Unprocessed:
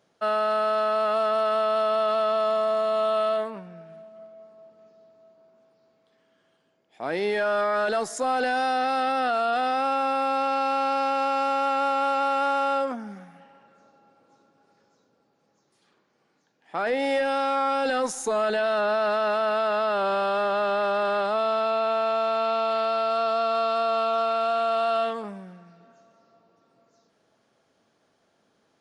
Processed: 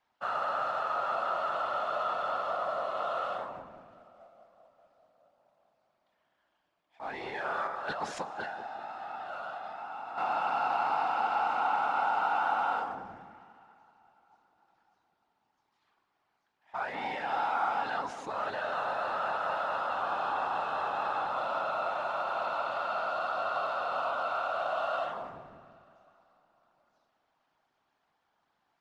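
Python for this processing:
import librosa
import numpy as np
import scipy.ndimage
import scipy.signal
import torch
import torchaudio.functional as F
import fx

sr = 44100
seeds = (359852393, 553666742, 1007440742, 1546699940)

y = fx.cvsd(x, sr, bps=64000)
y = scipy.signal.sosfilt(scipy.signal.butter(2, 3700.0, 'lowpass', fs=sr, output='sos'), y)
y = fx.low_shelf_res(y, sr, hz=670.0, db=-6.5, q=3.0)
y = fx.over_compress(y, sr, threshold_db=-32.0, ratio=-1.0, at=(7.67, 10.18))
y = fx.whisperise(y, sr, seeds[0])
y = fx.echo_banded(y, sr, ms=189, feedback_pct=46, hz=340.0, wet_db=-5.0)
y = fx.rev_freeverb(y, sr, rt60_s=3.5, hf_ratio=0.9, predelay_ms=35, drr_db=19.5)
y = y * librosa.db_to_amplitude(-8.0)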